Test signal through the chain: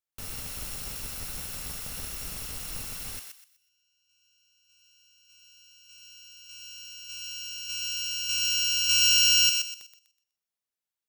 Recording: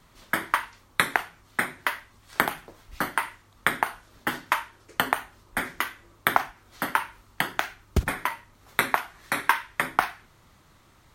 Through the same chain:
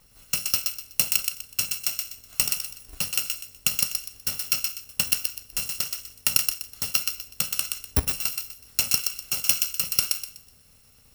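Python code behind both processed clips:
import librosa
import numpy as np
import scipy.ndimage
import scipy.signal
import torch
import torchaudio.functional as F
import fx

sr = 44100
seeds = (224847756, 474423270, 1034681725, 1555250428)

y = fx.bit_reversed(x, sr, seeds[0], block=128)
y = fx.echo_thinned(y, sr, ms=124, feedback_pct=30, hz=1200.0, wet_db=-4)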